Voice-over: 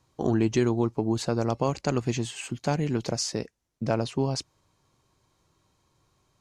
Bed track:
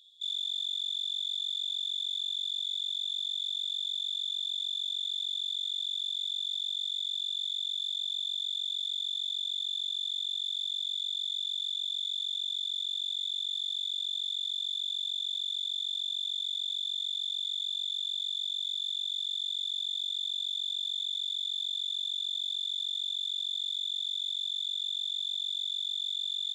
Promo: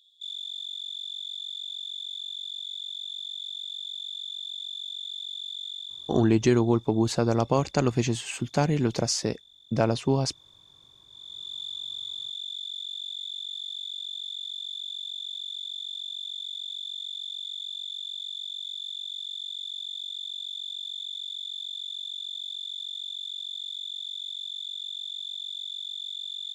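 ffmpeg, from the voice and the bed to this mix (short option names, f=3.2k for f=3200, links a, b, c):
-filter_complex "[0:a]adelay=5900,volume=2.5dB[a];[1:a]volume=17dB,afade=t=out:st=5.68:d=0.66:silence=0.105925,afade=t=in:st=11.07:d=0.54:silence=0.1[b];[a][b]amix=inputs=2:normalize=0"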